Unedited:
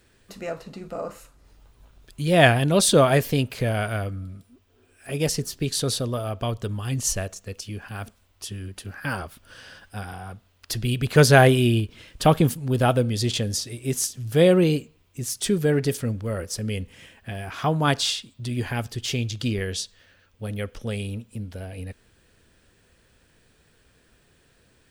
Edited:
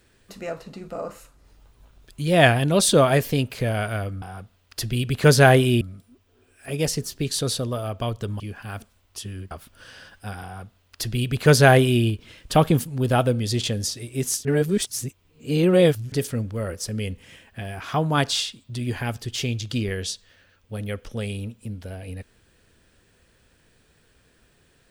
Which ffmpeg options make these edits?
-filter_complex "[0:a]asplit=7[a][b][c][d][e][f][g];[a]atrim=end=4.222[h];[b]atrim=start=10.138:end=11.732[i];[c]atrim=start=4.218:end=6.812[j];[d]atrim=start=7.658:end=8.772[k];[e]atrim=start=9.208:end=14.152[l];[f]atrim=start=14.148:end=15.822,asetpts=PTS-STARTPTS,areverse[m];[g]atrim=start=15.818[n];[h][i]acrossfade=d=0.004:c1=hsin:c2=hsin[o];[o][j]acrossfade=d=0.004:c1=hsin:c2=hsin[p];[p][k]acrossfade=d=0.004:c1=hsin:c2=hsin[q];[q][l]acrossfade=d=0.004:c1=hsin:c2=hsin[r];[r][m]acrossfade=d=0.004:c1=hsin:c2=hsin[s];[s][n]acrossfade=d=0.004:c1=hsin:c2=hsin"

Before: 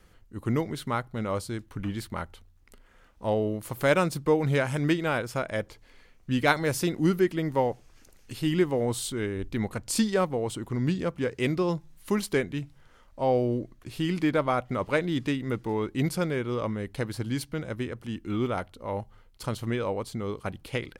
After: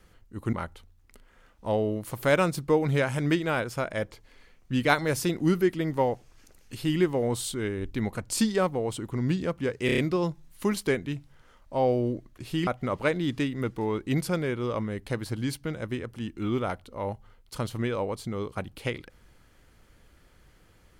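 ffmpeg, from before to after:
-filter_complex "[0:a]asplit=7[a][b][c][d][e][f][g];[a]atrim=end=0.532[h];[b]atrim=start=2.108:end=11.472[i];[c]atrim=start=11.438:end=11.472[j];[d]atrim=start=11.438:end=11.472[k];[e]atrim=start=11.438:end=11.472[l];[f]atrim=start=11.438:end=14.132[m];[g]atrim=start=14.548[n];[h][i]acrossfade=d=0.004:c1=hsin:c2=hsin[o];[o][j]acrossfade=d=0.004:c1=hsin:c2=hsin[p];[p][k]acrossfade=d=0.004:c1=hsin:c2=hsin[q];[q][l]acrossfade=d=0.004:c1=hsin:c2=hsin[r];[r][m]acrossfade=d=0.004:c1=hsin:c2=hsin[s];[s][n]acrossfade=d=0.004:c1=hsin:c2=hsin"

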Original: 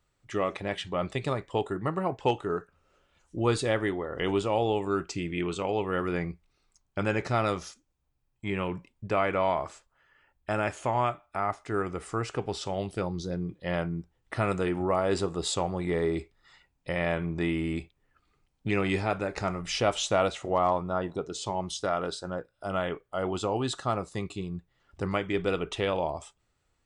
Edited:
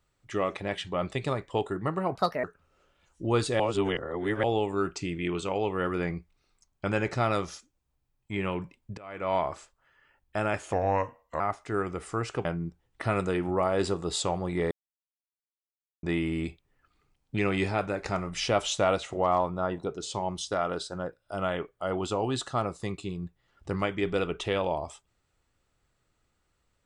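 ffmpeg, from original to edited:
-filter_complex "[0:a]asplit=11[a][b][c][d][e][f][g][h][i][j][k];[a]atrim=end=2.154[l];[b]atrim=start=2.15:end=2.57,asetpts=PTS-STARTPTS,asetrate=64827,aresample=44100[m];[c]atrim=start=2.566:end=3.732[n];[d]atrim=start=3.728:end=4.572,asetpts=PTS-STARTPTS,areverse[o];[e]atrim=start=4.568:end=9.11,asetpts=PTS-STARTPTS,afade=t=out:st=4.538:d=0.004:c=hsin:silence=0.0707946[p];[f]atrim=start=9.11:end=10.864,asetpts=PTS-STARTPTS,afade=t=in:d=0.37:c=qua:silence=0.0707946[q];[g]atrim=start=10.86:end=11.4,asetpts=PTS-STARTPTS,asetrate=35280,aresample=44100[r];[h]atrim=start=11.396:end=12.452[s];[i]atrim=start=13.768:end=16.03,asetpts=PTS-STARTPTS,afade=t=out:st=2.258:d=0.004:c=hsin[t];[j]atrim=start=16.03:end=17.35,asetpts=PTS-STARTPTS,volume=0[u];[k]atrim=start=17.35,asetpts=PTS-STARTPTS,afade=t=in:d=0.004:c=hsin[v];[l][m]acrossfade=d=0.004:c1=hsin:c2=hsin[w];[w][n]acrossfade=d=0.004:c1=hsin:c2=hsin[x];[x][o]acrossfade=d=0.004:c1=hsin:c2=hsin[y];[p][q]concat=n=2:v=0:a=1[z];[y][z]acrossfade=d=0.004:c1=hsin:c2=hsin[aa];[aa][r]acrossfade=d=0.004:c1=hsin:c2=hsin[ab];[ab][s]acrossfade=d=0.004:c1=hsin:c2=hsin[ac];[t][u][v]concat=n=3:v=0:a=1[ad];[ac][ad]acrossfade=d=0.004:c1=hsin:c2=hsin"

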